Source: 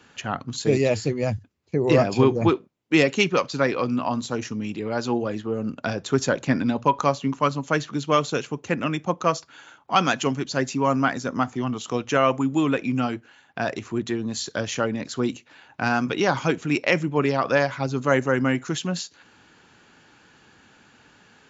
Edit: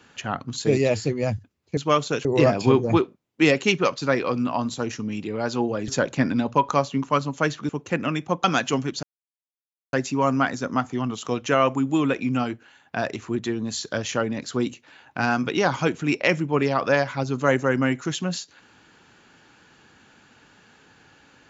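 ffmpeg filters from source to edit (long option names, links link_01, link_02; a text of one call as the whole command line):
ffmpeg -i in.wav -filter_complex "[0:a]asplit=7[link_01][link_02][link_03][link_04][link_05][link_06][link_07];[link_01]atrim=end=1.772[link_08];[link_02]atrim=start=7.988:end=8.472[link_09];[link_03]atrim=start=1.768:end=5.402[link_10];[link_04]atrim=start=6.178:end=7.992[link_11];[link_05]atrim=start=8.468:end=9.222[link_12];[link_06]atrim=start=9.968:end=10.56,asetpts=PTS-STARTPTS,afade=type=out:start_time=0.588:duration=0.004:curve=hsin,apad=pad_dur=0.9[link_13];[link_07]atrim=start=10.56,asetpts=PTS-STARTPTS,afade=type=in:duration=0.004:curve=hsin[link_14];[link_08][link_09]acrossfade=duration=0.004:curve1=hsin:curve2=hsin[link_15];[link_15][link_10]acrossfade=duration=0.004:curve1=hsin:curve2=hsin[link_16];[link_16][link_11]acrossfade=duration=0.004:curve1=hsin:curve2=hsin[link_17];[link_17][link_12]acrossfade=duration=0.004:curve1=hsin:curve2=hsin[link_18];[link_13][link_14]concat=n=2:v=0:a=1[link_19];[link_18][link_19]acrossfade=duration=0.004:curve1=hsin:curve2=hsin" out.wav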